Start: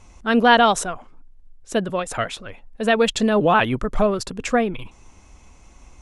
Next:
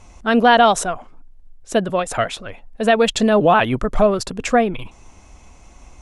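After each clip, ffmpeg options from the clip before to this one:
-filter_complex "[0:a]asplit=2[a][b];[b]alimiter=limit=-11dB:level=0:latency=1:release=157,volume=1dB[c];[a][c]amix=inputs=2:normalize=0,equalizer=f=680:w=3.2:g=4,volume=-3.5dB"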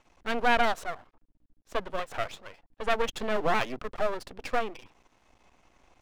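-filter_complex "[0:a]aeval=exprs='val(0)+0.00282*(sin(2*PI*60*n/s)+sin(2*PI*2*60*n/s)/2+sin(2*PI*3*60*n/s)/3+sin(2*PI*4*60*n/s)/4+sin(2*PI*5*60*n/s)/5)':c=same,acrossover=split=260 4300:gain=0.224 1 0.2[a][b][c];[a][b][c]amix=inputs=3:normalize=0,aeval=exprs='max(val(0),0)':c=same,volume=-7.5dB"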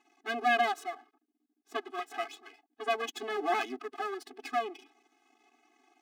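-af "afftfilt=real='re*eq(mod(floor(b*sr/1024/220),2),1)':imag='im*eq(mod(floor(b*sr/1024/220),2),1)':win_size=1024:overlap=0.75"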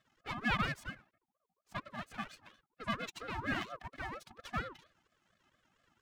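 -af "aeval=exprs='val(0)*sin(2*PI*720*n/s+720*0.35/4.3*sin(2*PI*4.3*n/s))':c=same,volume=-3.5dB"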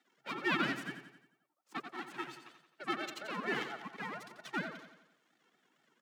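-af "aecho=1:1:88|176|264|352|440|528:0.335|0.171|0.0871|0.0444|0.0227|0.0116,afreqshift=130"

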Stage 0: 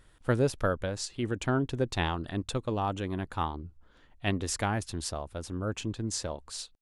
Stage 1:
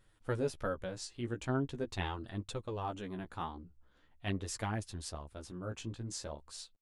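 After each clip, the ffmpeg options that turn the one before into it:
-af "flanger=delay=9:depth=8.3:regen=7:speed=0.43:shape=sinusoidal,volume=-5dB"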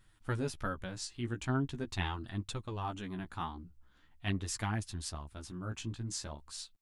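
-af "equalizer=f=510:w=1.7:g=-10.5,volume=3dB"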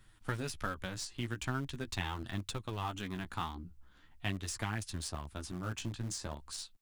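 -filter_complex "[0:a]acrossover=split=99|1400[a][b][c];[a]acompressor=threshold=-49dB:ratio=4[d];[b]acompressor=threshold=-44dB:ratio=4[e];[c]acompressor=threshold=-44dB:ratio=4[f];[d][e][f]amix=inputs=3:normalize=0,asplit=2[g][h];[h]aeval=exprs='val(0)*gte(abs(val(0)),0.0106)':c=same,volume=-9dB[i];[g][i]amix=inputs=2:normalize=0,volume=3.5dB"

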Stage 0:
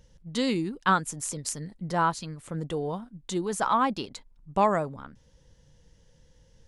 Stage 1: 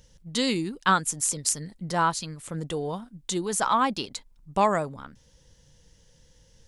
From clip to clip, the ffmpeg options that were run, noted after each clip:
-af "highshelf=f=2.7k:g=8.5"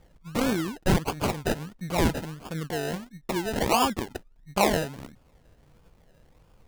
-af "acrusher=samples=31:mix=1:aa=0.000001:lfo=1:lforange=18.6:lforate=1.5"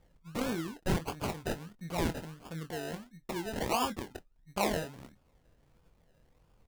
-filter_complex "[0:a]asplit=2[a][b];[b]adelay=24,volume=-10dB[c];[a][c]amix=inputs=2:normalize=0,volume=-8.5dB"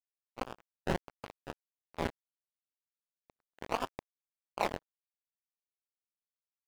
-filter_complex "[0:a]acrusher=bits=3:mix=0:aa=0.5,asplit=2[a][b];[b]highpass=f=720:p=1,volume=5dB,asoftclip=type=tanh:threshold=-16.5dB[c];[a][c]amix=inputs=2:normalize=0,lowpass=f=2.1k:p=1,volume=-6dB,volume=1dB"

